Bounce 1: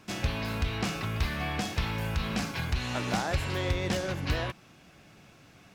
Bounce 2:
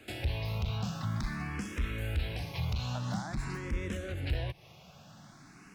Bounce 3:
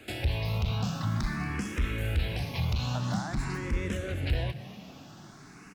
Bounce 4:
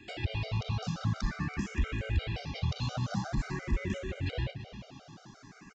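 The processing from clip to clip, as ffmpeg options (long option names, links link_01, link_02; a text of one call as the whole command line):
ffmpeg -i in.wav -filter_complex "[0:a]acrossover=split=160[link_01][link_02];[link_02]acompressor=threshold=-40dB:ratio=6[link_03];[link_01][link_03]amix=inputs=2:normalize=0,volume=28dB,asoftclip=hard,volume=-28dB,asplit=2[link_04][link_05];[link_05]afreqshift=0.48[link_06];[link_04][link_06]amix=inputs=2:normalize=1,volume=4dB" out.wav
ffmpeg -i in.wav -filter_complex "[0:a]asplit=6[link_01][link_02][link_03][link_04][link_05][link_06];[link_02]adelay=231,afreqshift=67,volume=-16dB[link_07];[link_03]adelay=462,afreqshift=134,volume=-21.7dB[link_08];[link_04]adelay=693,afreqshift=201,volume=-27.4dB[link_09];[link_05]adelay=924,afreqshift=268,volume=-33dB[link_10];[link_06]adelay=1155,afreqshift=335,volume=-38.7dB[link_11];[link_01][link_07][link_08][link_09][link_10][link_11]amix=inputs=6:normalize=0,volume=4dB" out.wav
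ffmpeg -i in.wav -af "aecho=1:1:333:0.158,aresample=16000,aresample=44100,afftfilt=real='re*gt(sin(2*PI*5.7*pts/sr)*(1-2*mod(floor(b*sr/1024/400),2)),0)':imag='im*gt(sin(2*PI*5.7*pts/sr)*(1-2*mod(floor(b*sr/1024/400),2)),0)':win_size=1024:overlap=0.75" out.wav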